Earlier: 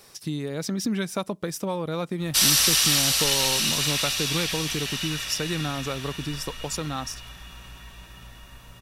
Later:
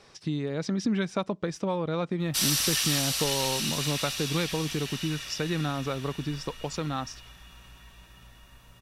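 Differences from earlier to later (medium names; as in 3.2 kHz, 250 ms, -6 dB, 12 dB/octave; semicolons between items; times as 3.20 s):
speech: add distance through air 120 m; background -7.0 dB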